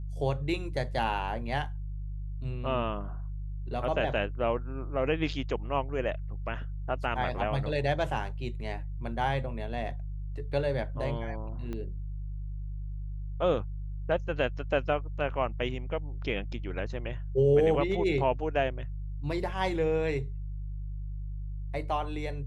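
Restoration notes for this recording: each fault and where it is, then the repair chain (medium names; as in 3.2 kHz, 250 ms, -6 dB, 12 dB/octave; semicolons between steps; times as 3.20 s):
hum 50 Hz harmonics 3 -36 dBFS
11.73 s: pop -25 dBFS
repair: de-click; de-hum 50 Hz, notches 3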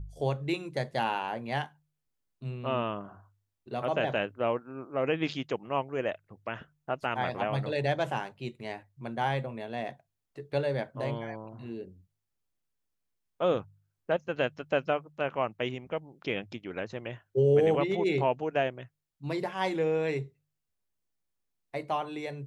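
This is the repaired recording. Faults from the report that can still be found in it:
11.73 s: pop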